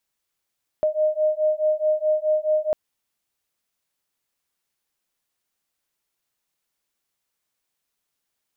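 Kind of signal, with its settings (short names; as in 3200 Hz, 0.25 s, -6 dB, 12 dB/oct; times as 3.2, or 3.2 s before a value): beating tones 614 Hz, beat 4.7 Hz, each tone -21.5 dBFS 1.90 s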